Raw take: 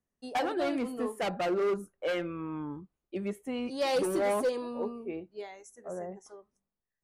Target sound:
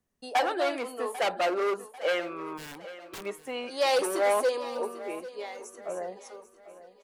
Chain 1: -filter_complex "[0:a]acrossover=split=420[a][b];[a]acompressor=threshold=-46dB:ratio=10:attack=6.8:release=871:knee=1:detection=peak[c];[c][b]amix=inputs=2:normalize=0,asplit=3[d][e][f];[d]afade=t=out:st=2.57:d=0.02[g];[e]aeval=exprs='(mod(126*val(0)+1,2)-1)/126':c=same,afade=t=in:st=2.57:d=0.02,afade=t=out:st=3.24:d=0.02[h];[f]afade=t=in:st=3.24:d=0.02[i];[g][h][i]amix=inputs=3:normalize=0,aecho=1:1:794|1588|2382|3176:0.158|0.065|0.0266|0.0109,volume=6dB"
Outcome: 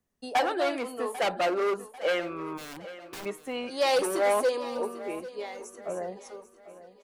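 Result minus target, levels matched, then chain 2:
compressor: peak gain reduction -8 dB
-filter_complex "[0:a]acrossover=split=420[a][b];[a]acompressor=threshold=-55dB:ratio=10:attack=6.8:release=871:knee=1:detection=peak[c];[c][b]amix=inputs=2:normalize=0,asplit=3[d][e][f];[d]afade=t=out:st=2.57:d=0.02[g];[e]aeval=exprs='(mod(126*val(0)+1,2)-1)/126':c=same,afade=t=in:st=2.57:d=0.02,afade=t=out:st=3.24:d=0.02[h];[f]afade=t=in:st=3.24:d=0.02[i];[g][h][i]amix=inputs=3:normalize=0,aecho=1:1:794|1588|2382|3176:0.158|0.065|0.0266|0.0109,volume=6dB"

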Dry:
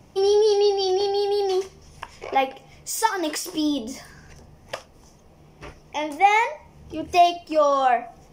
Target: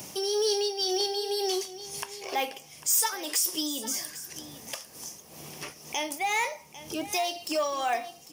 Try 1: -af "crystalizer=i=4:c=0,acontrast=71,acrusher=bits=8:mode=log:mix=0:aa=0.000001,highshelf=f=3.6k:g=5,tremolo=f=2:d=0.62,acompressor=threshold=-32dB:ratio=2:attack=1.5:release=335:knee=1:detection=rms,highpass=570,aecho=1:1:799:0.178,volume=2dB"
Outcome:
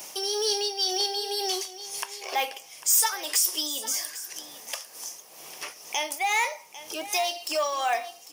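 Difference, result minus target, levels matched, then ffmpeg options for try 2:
125 Hz band -19.0 dB; compressor: peak gain reduction -3 dB
-af "crystalizer=i=4:c=0,acontrast=71,acrusher=bits=8:mode=log:mix=0:aa=0.000001,highshelf=f=3.6k:g=5,tremolo=f=2:d=0.62,acompressor=threshold=-38.5dB:ratio=2:attack=1.5:release=335:knee=1:detection=rms,highpass=160,aecho=1:1:799:0.178,volume=2dB"

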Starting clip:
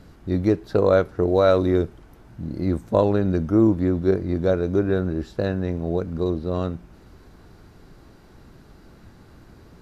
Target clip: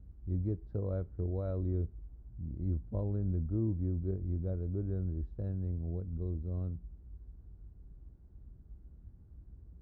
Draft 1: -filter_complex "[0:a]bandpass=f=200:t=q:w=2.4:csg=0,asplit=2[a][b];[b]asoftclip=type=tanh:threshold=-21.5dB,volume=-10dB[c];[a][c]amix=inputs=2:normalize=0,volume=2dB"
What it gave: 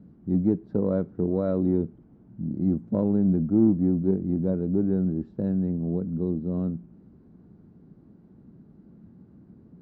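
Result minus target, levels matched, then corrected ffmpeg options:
125 Hz band -6.0 dB
-filter_complex "[0:a]bandpass=f=51:t=q:w=2.4:csg=0,asplit=2[a][b];[b]asoftclip=type=tanh:threshold=-21.5dB,volume=-10dB[c];[a][c]amix=inputs=2:normalize=0,volume=2dB"

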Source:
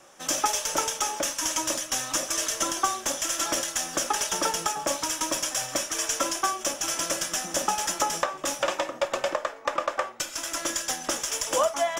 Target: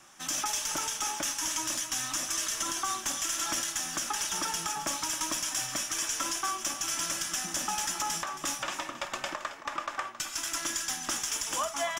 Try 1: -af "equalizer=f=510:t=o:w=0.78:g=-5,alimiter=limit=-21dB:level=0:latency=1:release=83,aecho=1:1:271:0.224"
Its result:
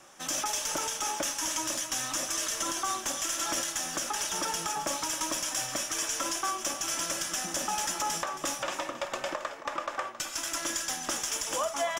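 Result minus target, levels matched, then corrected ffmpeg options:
500 Hz band +5.5 dB
-af "equalizer=f=510:t=o:w=0.78:g=-15.5,alimiter=limit=-21dB:level=0:latency=1:release=83,aecho=1:1:271:0.224"

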